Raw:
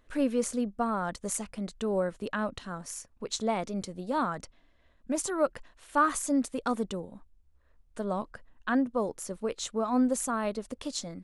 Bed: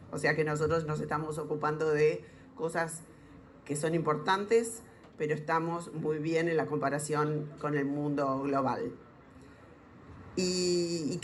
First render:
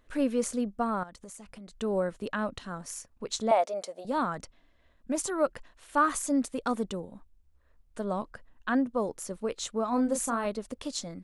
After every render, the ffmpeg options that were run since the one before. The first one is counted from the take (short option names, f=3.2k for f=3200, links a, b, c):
-filter_complex "[0:a]asettb=1/sr,asplit=3[a][b][c];[a]atrim=end=1.034[d];[b]atrim=start=1.03:end=1.75,asetpts=PTS-STARTPTS,afade=t=in:d=0.004:c=qsin,afade=t=out:st=0.716:d=0.004:c=qsin,acompressor=threshold=-43dB:ratio=8:attack=3.2:release=140:knee=1:detection=peak[e];[c]atrim=start=1.746[f];[d][e]acrossfade=d=0.004:c1=hsin:c2=qsin[g];[g][f]acrossfade=d=0.004:c1=qsin:c2=hsin,asettb=1/sr,asplit=3[h][i][j];[h]atrim=end=3.514[k];[i]atrim=start=3.51:end=4.05,asetpts=PTS-STARTPTS,afade=t=in:d=0.004:c=qsin,afade=t=out:st=0.536:d=0.004:c=qsin,highpass=f=630:t=q:w=4.9[l];[j]atrim=start=4.046[m];[k][l]acrossfade=d=0.004:c1=hsin:c2=qsin[n];[n][m]acrossfade=d=0.004:c1=qsin:c2=hsin,asettb=1/sr,asplit=3[o][p][q];[o]atrim=end=9.894[r];[p]atrim=start=9.89:end=10.46,asetpts=PTS-STARTPTS,afade=t=in:d=0.004:c=qsin,afade=t=out:st=0.566:d=0.004:c=qsin,asplit=2[s][t];[t]adelay=30,volume=-7.5dB[u];[s][u]amix=inputs=2:normalize=0,atrim=end_sample=25137[v];[q]atrim=start=10.456[w];[r][v]acrossfade=d=0.004:c1=hsin:c2=qsin[x];[x][w]acrossfade=d=0.004:c1=qsin:c2=hsin"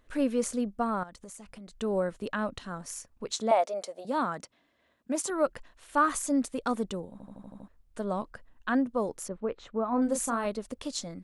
-filter_complex "[0:a]asettb=1/sr,asplit=3[a][b][c];[a]atrim=end=3.314[d];[b]atrim=start=3.31:end=5.3,asetpts=PTS-STARTPTS,afade=t=in:d=0.004:c=qsin,afade=t=out:st=1.986:d=0.004:c=qsin,highpass=160[e];[c]atrim=start=5.296[f];[d][e]acrossfade=d=0.004:c1=hsin:c2=qsin[g];[g][f]acrossfade=d=0.004:c1=qsin:c2=hsin,asettb=1/sr,asplit=3[h][i][j];[h]atrim=end=9.284[k];[i]atrim=start=9.28:end=10.02,asetpts=PTS-STARTPTS,afade=t=in:d=0.004:c=qsin,afade=t=out:st=0.736:d=0.004:c=qsin,lowpass=1.8k[l];[j]atrim=start=10.016[m];[k][l]acrossfade=d=0.004:c1=hsin:c2=qsin[n];[n][m]acrossfade=d=0.004:c1=qsin:c2=hsin,asplit=8[o][p][q][r][s][t][u][v];[o]atrim=end=7.202[w];[p]atrim=start=7.118:end=7.202[x];[q]atrim=start=7.118:end=7.202[y];[r]atrim=start=7.118:end=7.202[z];[s]atrim=start=7.118:end=7.202[aa];[t]atrim=start=7.118:end=7.202[ab];[u]atrim=start=7.118:end=7.202[ac];[v]atrim=start=7.678[ad];[w][x]acrossfade=d=0.004:c1=hsin:c2=hsin[ae];[ae][y]acrossfade=d=0.004:c1=hsin:c2=hsin[af];[af][z]acrossfade=d=0.004:c1=hsin:c2=hsin[ag];[ag][aa]acrossfade=d=0.004:c1=hsin:c2=hsin[ah];[ah][ab]acrossfade=d=0.004:c1=hsin:c2=hsin[ai];[ai][ac]acrossfade=d=0.004:c1=hsin:c2=hsin[aj];[aj][ad]acrossfade=d=0.004:c1=hsin:c2=hsin"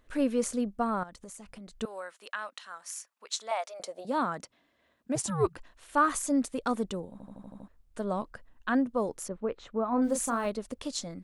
-filter_complex "[0:a]asettb=1/sr,asplit=3[a][b][c];[a]atrim=end=1.854[d];[b]atrim=start=1.85:end=3.8,asetpts=PTS-STARTPTS,afade=t=in:d=0.004:c=qsin,afade=t=out:st=1.946:d=0.004:c=qsin,highpass=1.1k[e];[c]atrim=start=3.796[f];[d][e]acrossfade=d=0.004:c1=hsin:c2=qsin[g];[g][f]acrossfade=d=0.004:c1=qsin:c2=hsin,asplit=3[h][i][j];[h]afade=t=out:st=5.15:d=0.02[k];[i]afreqshift=-180,afade=t=in:st=5.15:d=0.02,afade=t=out:st=5.56:d=0.02[l];[j]afade=t=in:st=5.56:d=0.02[m];[k][l][m]amix=inputs=3:normalize=0,asettb=1/sr,asplit=3[n][o][p];[n]atrim=end=10.044[q];[o]atrim=start=10.04:end=10.5,asetpts=PTS-STARTPTS,afade=t=in:d=0.004:c=qsin,afade=t=out:st=0.456:d=0.004:c=qsin,aeval=exprs='val(0)*gte(abs(val(0)),0.00316)':c=same[r];[p]atrim=start=10.496[s];[q][r]acrossfade=d=0.004:c1=hsin:c2=qsin[t];[t][s]acrossfade=d=0.004:c1=qsin:c2=hsin"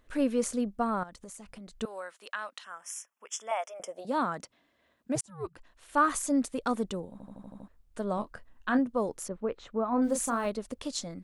-filter_complex "[0:a]asettb=1/sr,asplit=3[a][b][c];[a]atrim=end=2.644[d];[b]atrim=start=2.64:end=3.97,asetpts=PTS-STARTPTS,afade=t=in:d=0.004:c=qsin,afade=t=out:st=1.326:d=0.004:c=qsin,asuperstop=centerf=4200:order=12:qfactor=2.6[e];[c]atrim=start=3.966[f];[d][e]acrossfade=d=0.004:c1=hsin:c2=qsin[g];[g][f]acrossfade=d=0.004:c1=qsin:c2=hsin,asettb=1/sr,asplit=3[h][i][j];[h]atrim=end=8.154[k];[i]atrim=start=8.15:end=8.79,asetpts=PTS-STARTPTS,afade=t=in:d=0.004:c=qsin,afade=t=out:st=0.636:d=0.004:c=qsin,asplit=2[l][m];[m]adelay=24,volume=-10dB[n];[l][n]amix=inputs=2:normalize=0,atrim=end_sample=28224[o];[j]atrim=start=8.786[p];[k][o]acrossfade=d=0.004:c1=hsin:c2=qsin[q];[q][p]acrossfade=d=0.004:c1=qsin:c2=hsin,asplit=2[r][s];[r]atrim=end=5.21,asetpts=PTS-STARTPTS,afade=t=out:st=5.206:d=0.004:c=hsin[t];[s]atrim=start=5.21,asetpts=PTS-STARTPTS,afade=t=in:d=0.79[u];[t][u]concat=n=2:v=0:a=1"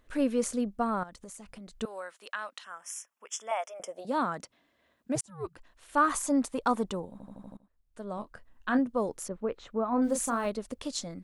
-filter_complex "[0:a]asettb=1/sr,asplit=3[a][b][c];[a]atrim=end=6.104[d];[b]atrim=start=6.1:end=7.06,asetpts=PTS-STARTPTS,afade=t=in:d=0.004:c=qsin,afade=t=out:st=0.956:d=0.004:c=qsin,equalizer=f=950:w=1.7:g=7.5[e];[c]atrim=start=7.056[f];[d][e]acrossfade=d=0.004:c1=hsin:c2=qsin[g];[g][f]acrossfade=d=0.004:c1=qsin:c2=hsin,asplit=2[h][i];[h]atrim=end=7.57,asetpts=PTS-STARTPTS,afade=t=out:st=7.566:d=0.004:c=hsin:silence=0.0944061[j];[i]atrim=start=7.57,asetpts=PTS-STARTPTS,afade=t=in:d=1.21:silence=0.0944061[k];[j][k]concat=n=2:v=0:a=1"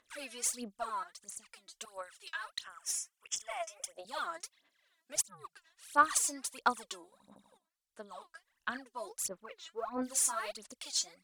-af "bandpass=f=6.7k:t=q:w=0.53:csg=0,aphaser=in_gain=1:out_gain=1:delay=3.1:decay=0.8:speed=1.5:type=sinusoidal"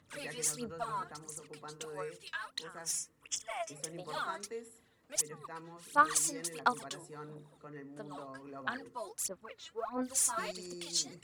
-filter_complex "[1:a]volume=-17.5dB[a];[0:a][a]amix=inputs=2:normalize=0"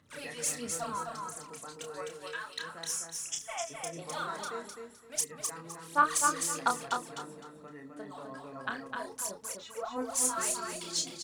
-filter_complex "[0:a]asplit=2[a][b];[b]adelay=30,volume=-6dB[c];[a][c]amix=inputs=2:normalize=0,aecho=1:1:257|514|771:0.631|0.151|0.0363"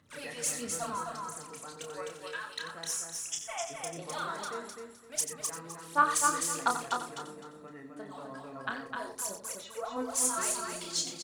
-af "aecho=1:1:90:0.299"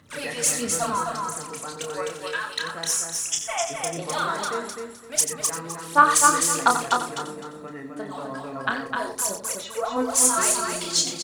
-af "volume=10.5dB,alimiter=limit=-3dB:level=0:latency=1"